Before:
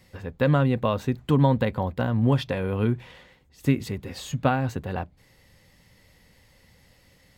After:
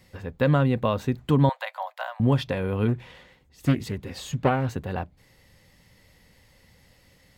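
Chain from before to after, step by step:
0:01.49–0:02.20: Butterworth high-pass 610 Hz 72 dB per octave
0:02.88–0:04.72: highs frequency-modulated by the lows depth 0.46 ms

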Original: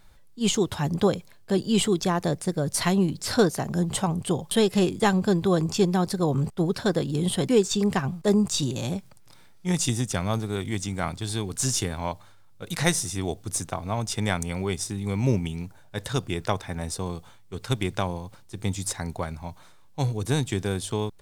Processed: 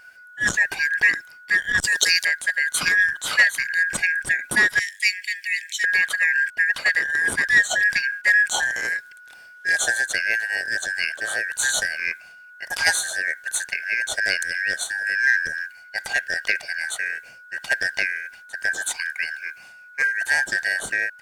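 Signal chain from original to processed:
band-splitting scrambler in four parts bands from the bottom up 3142
0:01.81–0:02.25: high shelf with overshoot 2,900 Hz +11 dB, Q 1.5
0:04.79–0:05.84: Butterworth high-pass 2,000 Hz 72 dB per octave
saturating transformer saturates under 2,200 Hz
level +3.5 dB

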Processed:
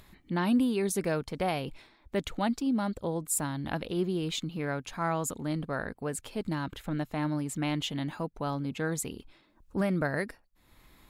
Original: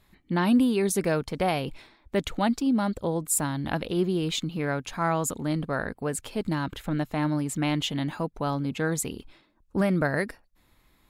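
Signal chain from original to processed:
upward compression, threshold −42 dBFS
level −4.5 dB

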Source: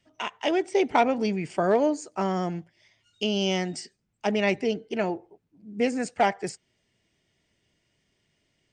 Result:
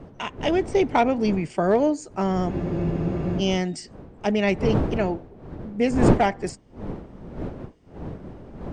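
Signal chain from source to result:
wind on the microphone 420 Hz −34 dBFS
low-shelf EQ 350 Hz +6 dB
frozen spectrum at 0:02.52, 0.88 s

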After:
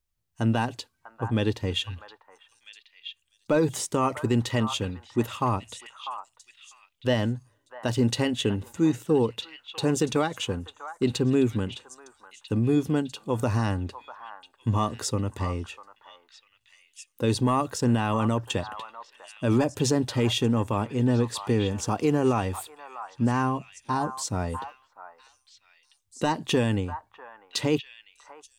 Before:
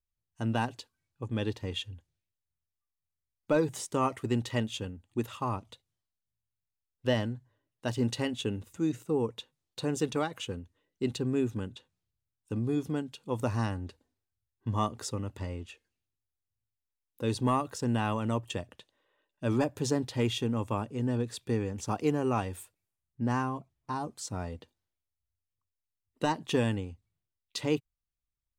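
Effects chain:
brickwall limiter −20.5 dBFS, peak gain reduction 5 dB
echo through a band-pass that steps 647 ms, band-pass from 1,100 Hz, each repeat 1.4 octaves, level −7 dB
level +7.5 dB

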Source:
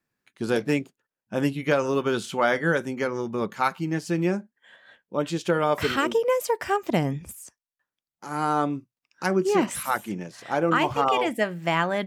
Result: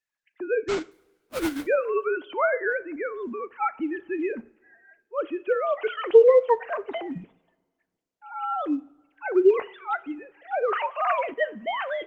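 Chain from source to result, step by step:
three sine waves on the formant tracks
0:00.68–0:01.67: sample-rate reduction 1,800 Hz, jitter 20%
0:02.69–0:04.30: dynamic equaliser 480 Hz, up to −4 dB, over −39 dBFS, Q 2.2
coupled-rooms reverb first 0.48 s, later 1.8 s, DRR 15.5 dB
Opus 24 kbit/s 48,000 Hz

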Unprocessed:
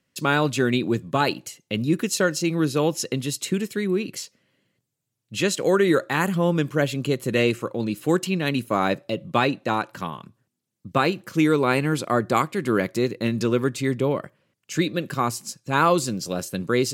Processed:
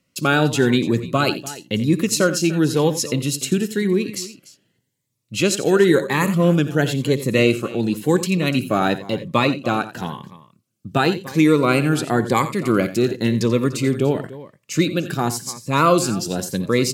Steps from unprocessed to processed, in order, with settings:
multi-tap delay 59/87/294 ms −20/−14/−17.5 dB
phaser whose notches keep moving one way rising 0.95 Hz
level +5 dB

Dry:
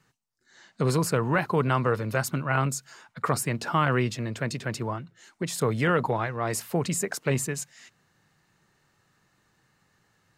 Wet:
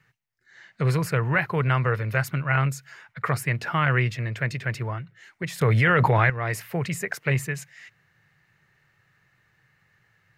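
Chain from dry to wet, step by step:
octave-band graphic EQ 125/250/1,000/2,000/4,000/8,000 Hz +7/−9/−4/+10/−3/−8 dB
0:05.61–0:06.30: envelope flattener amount 100%

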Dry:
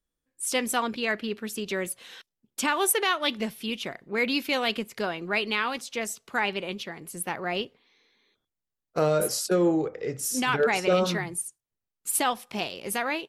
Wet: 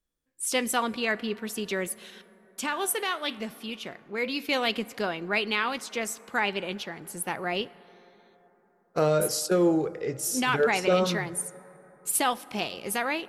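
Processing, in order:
0:02.10–0:04.49: flanger 1.8 Hz, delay 9 ms, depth 3.8 ms, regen +87%
dense smooth reverb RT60 4.4 s, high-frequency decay 0.3×, DRR 19.5 dB

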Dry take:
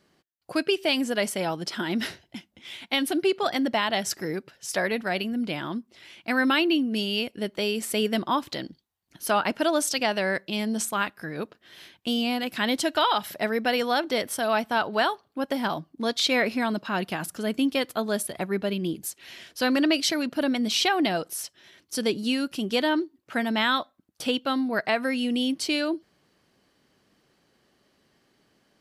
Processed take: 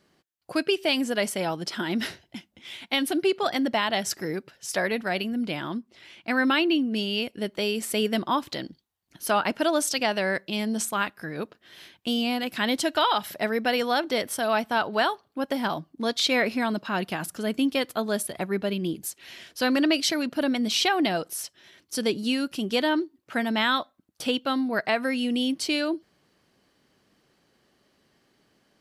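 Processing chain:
0:05.77–0:07.22: high-shelf EQ 8,100 Hz −7 dB

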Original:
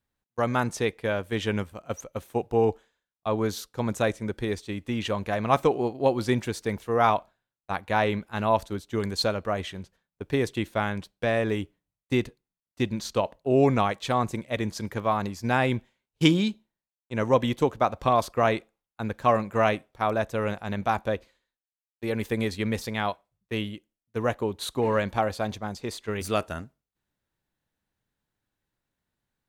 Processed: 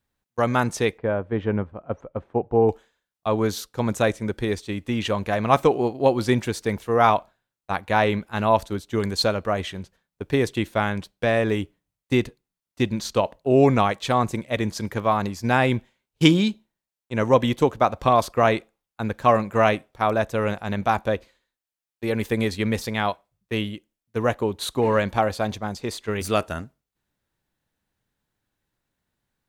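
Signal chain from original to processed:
0:00.98–0:02.69: low-pass filter 1,200 Hz 12 dB per octave
level +4 dB

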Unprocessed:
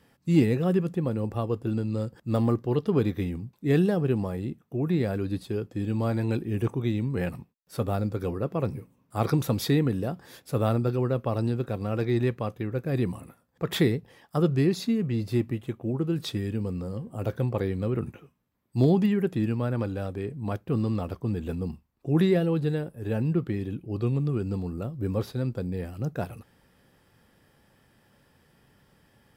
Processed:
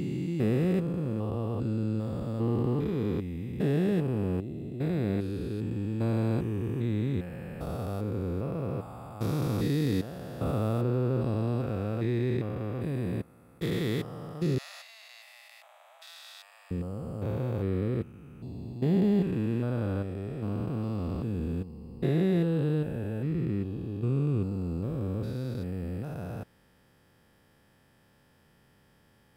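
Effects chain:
spectrum averaged block by block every 400 ms
0:14.58–0:16.71: Butterworth high-pass 620 Hz 96 dB per octave

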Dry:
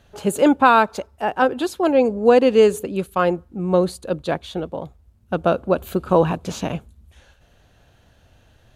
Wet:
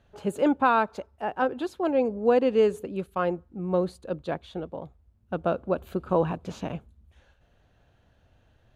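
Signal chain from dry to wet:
high-shelf EQ 4,400 Hz −11.5 dB
level −7.5 dB

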